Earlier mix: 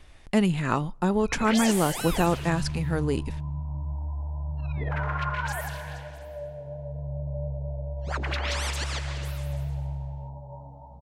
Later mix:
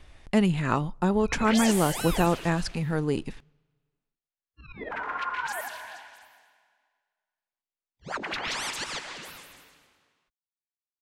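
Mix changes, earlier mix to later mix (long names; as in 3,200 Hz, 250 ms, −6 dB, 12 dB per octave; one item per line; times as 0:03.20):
speech: add high-shelf EQ 8,300 Hz −5 dB
second sound: muted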